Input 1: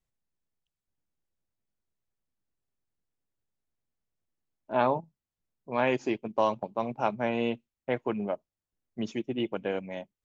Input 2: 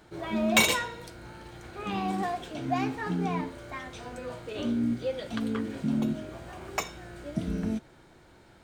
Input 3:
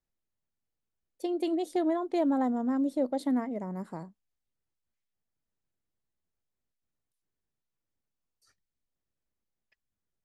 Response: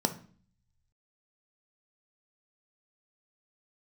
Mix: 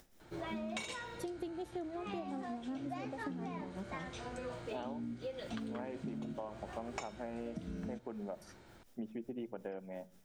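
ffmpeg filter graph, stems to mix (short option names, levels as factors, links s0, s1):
-filter_complex "[0:a]lowpass=1700,adynamicequalizer=threshold=0.01:dfrequency=280:dqfactor=1.3:tfrequency=280:tqfactor=1.3:attack=5:release=100:ratio=0.375:range=2.5:mode=cutabove:tftype=bell,volume=0.335,asplit=3[s0][s1][s2];[s1]volume=0.15[s3];[1:a]lowpass=f=9200:w=0.5412,lowpass=f=9200:w=1.3066,adelay=200,volume=0.708[s4];[2:a]acontrast=78,tremolo=f=5.5:d=0.72,acompressor=mode=upward:threshold=0.0282:ratio=2.5,volume=0.282,asplit=2[s5][s6];[s6]volume=0.126[s7];[s2]apad=whole_len=451891[s8];[s5][s8]sidechaincompress=threshold=0.0112:ratio=8:attack=38:release=706[s9];[3:a]atrim=start_sample=2205[s10];[s3][s7]amix=inputs=2:normalize=0[s11];[s11][s10]afir=irnorm=-1:irlink=0[s12];[s0][s4][s9][s12]amix=inputs=4:normalize=0,acompressor=threshold=0.0126:ratio=16"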